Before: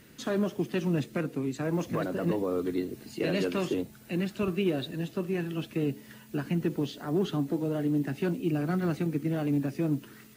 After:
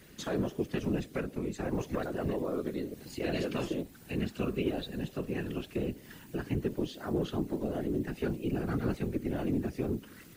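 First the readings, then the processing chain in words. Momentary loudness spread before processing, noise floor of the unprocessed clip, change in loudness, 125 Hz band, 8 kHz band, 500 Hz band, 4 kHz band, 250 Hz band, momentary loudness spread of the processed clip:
5 LU, -52 dBFS, -4.0 dB, -4.5 dB, -2.5 dB, -3.0 dB, -3.5 dB, -4.5 dB, 5 LU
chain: in parallel at 0 dB: compression, threshold -38 dBFS, peak gain reduction 14.5 dB; on the sum: whisper effect; trim -6 dB

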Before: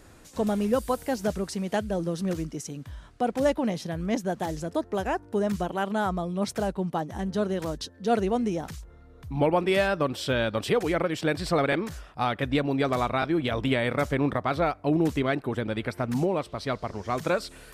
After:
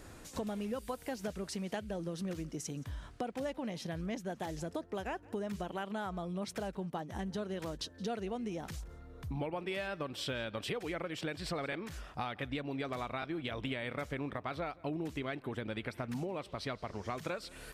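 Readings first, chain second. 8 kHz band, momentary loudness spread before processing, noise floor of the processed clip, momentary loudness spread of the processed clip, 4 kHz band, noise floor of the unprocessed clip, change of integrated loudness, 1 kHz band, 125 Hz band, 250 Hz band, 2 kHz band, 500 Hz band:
-7.5 dB, 7 LU, -56 dBFS, 3 LU, -8.0 dB, -51 dBFS, -12.0 dB, -12.5 dB, -11.0 dB, -12.0 dB, -10.5 dB, -13.0 dB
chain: dynamic bell 2.6 kHz, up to +5 dB, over -46 dBFS, Q 1; compression 5:1, threshold -37 dBFS, peak gain reduction 17 dB; delay 172 ms -23 dB

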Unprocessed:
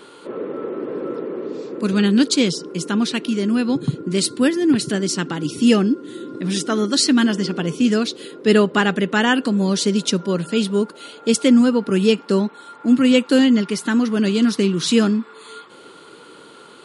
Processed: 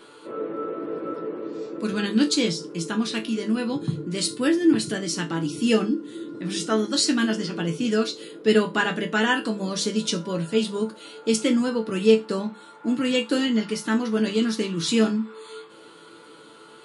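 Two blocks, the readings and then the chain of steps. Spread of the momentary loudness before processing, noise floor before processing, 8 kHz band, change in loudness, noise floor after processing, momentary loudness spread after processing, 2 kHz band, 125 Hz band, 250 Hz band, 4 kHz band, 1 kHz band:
12 LU, -44 dBFS, -4.5 dB, -5.5 dB, -48 dBFS, 11 LU, -3.5 dB, -6.5 dB, -6.5 dB, -4.0 dB, -4.0 dB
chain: hum notches 50/100/150/200 Hz; chord resonator A2 sus4, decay 0.22 s; trim +7.5 dB

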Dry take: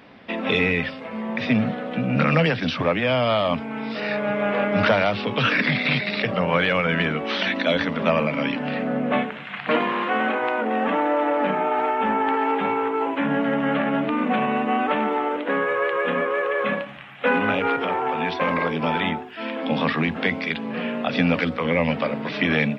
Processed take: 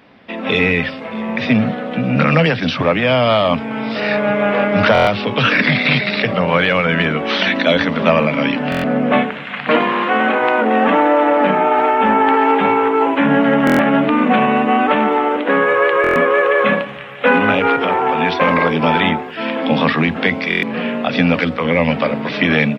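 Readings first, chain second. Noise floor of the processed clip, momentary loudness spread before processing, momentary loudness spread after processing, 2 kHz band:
-28 dBFS, 6 LU, 6 LU, +7.5 dB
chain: delay 629 ms -22 dB; level rider gain up to 11.5 dB; buffer glitch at 4.93/8.70/13.65/16.02/20.49 s, samples 1024, times 5

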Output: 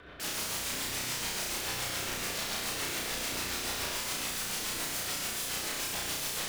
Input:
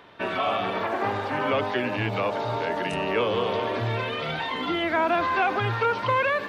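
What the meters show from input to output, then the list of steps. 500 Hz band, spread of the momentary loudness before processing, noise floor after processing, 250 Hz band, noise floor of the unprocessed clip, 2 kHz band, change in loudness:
-18.0 dB, 5 LU, -37 dBFS, -13.5 dB, -32 dBFS, -9.0 dB, -6.5 dB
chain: octave divider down 2 oct, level +3 dB; peaking EQ 1.5 kHz +9 dB 0.27 oct; band-stop 890 Hz, Q 5.8; de-hum 161.7 Hz, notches 12; peak limiter -17 dBFS, peak gain reduction 7.5 dB; integer overflow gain 30.5 dB; rotary cabinet horn 7 Hz; on a send: flutter echo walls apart 5.7 m, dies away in 0.71 s

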